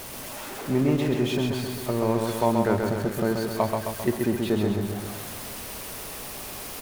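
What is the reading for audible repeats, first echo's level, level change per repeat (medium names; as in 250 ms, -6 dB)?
4, -4.0 dB, -4.5 dB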